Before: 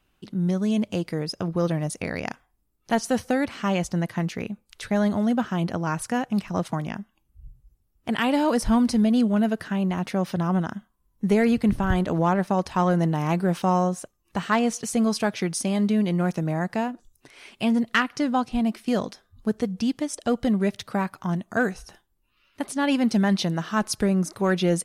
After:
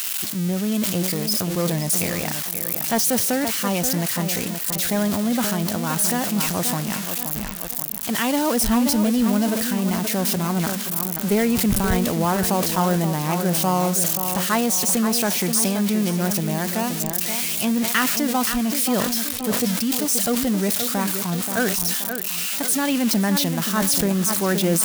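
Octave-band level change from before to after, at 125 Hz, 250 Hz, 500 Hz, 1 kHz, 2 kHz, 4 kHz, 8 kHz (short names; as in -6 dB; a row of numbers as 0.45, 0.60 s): +1.5, +1.5, +1.5, +1.5, +3.0, +9.5, +15.0 dB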